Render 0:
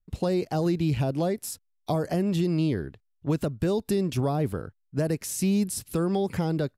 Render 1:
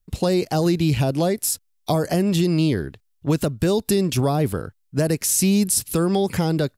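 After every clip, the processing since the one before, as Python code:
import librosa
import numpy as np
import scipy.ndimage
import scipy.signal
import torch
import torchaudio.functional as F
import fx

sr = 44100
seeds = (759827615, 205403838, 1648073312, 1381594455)

y = fx.high_shelf(x, sr, hz=3000.0, db=8.0)
y = y * librosa.db_to_amplitude(5.5)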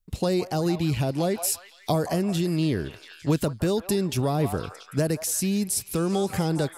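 y = fx.echo_stepped(x, sr, ms=171, hz=920.0, octaves=0.7, feedback_pct=70, wet_db=-6.5)
y = fx.rider(y, sr, range_db=3, speed_s=0.5)
y = y * librosa.db_to_amplitude(-4.5)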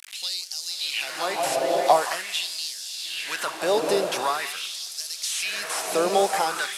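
y = fx.delta_mod(x, sr, bps=64000, step_db=-37.0)
y = fx.echo_diffused(y, sr, ms=548, feedback_pct=45, wet_db=-4.5)
y = fx.filter_lfo_highpass(y, sr, shape='sine', hz=0.45, low_hz=580.0, high_hz=5200.0, q=2.2)
y = y * librosa.db_to_amplitude(5.0)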